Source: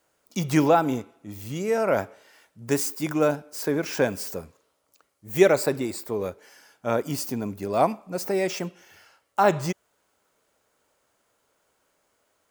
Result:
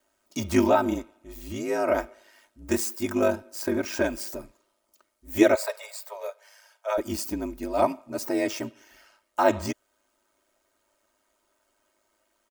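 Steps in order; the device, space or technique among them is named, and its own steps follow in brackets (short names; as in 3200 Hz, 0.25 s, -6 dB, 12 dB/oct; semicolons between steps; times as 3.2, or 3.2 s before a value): 5.55–6.98 Chebyshev high-pass 480 Hz, order 10; ring-modulated robot voice (ring modulator 52 Hz; comb 3.2 ms, depth 85%); gain -1 dB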